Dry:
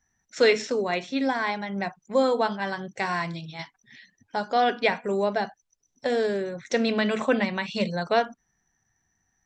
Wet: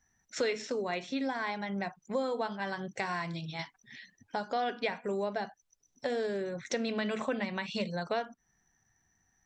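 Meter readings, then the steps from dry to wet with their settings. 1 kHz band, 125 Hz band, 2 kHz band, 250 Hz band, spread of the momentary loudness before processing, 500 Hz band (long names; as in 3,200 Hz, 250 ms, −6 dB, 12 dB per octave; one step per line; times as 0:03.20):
−9.0 dB, −6.0 dB, −8.5 dB, −8.0 dB, 11 LU, −9.0 dB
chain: downward compressor 2.5 to 1, threshold −34 dBFS, peak gain reduction 12.5 dB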